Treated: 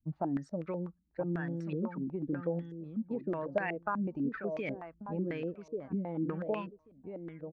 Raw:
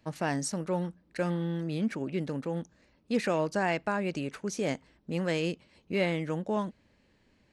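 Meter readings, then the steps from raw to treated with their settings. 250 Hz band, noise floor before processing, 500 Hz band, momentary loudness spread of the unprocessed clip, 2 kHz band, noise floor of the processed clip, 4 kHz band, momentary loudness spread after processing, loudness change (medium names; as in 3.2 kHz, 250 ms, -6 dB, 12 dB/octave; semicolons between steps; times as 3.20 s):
-3.0 dB, -67 dBFS, -4.5 dB, 7 LU, -7.0 dB, -70 dBFS, under -15 dB, 8 LU, -4.5 dB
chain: expander on every frequency bin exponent 1.5; compression, threshold -35 dBFS, peak gain reduction 11 dB; feedback delay 1137 ms, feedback 17%, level -8 dB; step-sequenced low-pass 8.1 Hz 230–2300 Hz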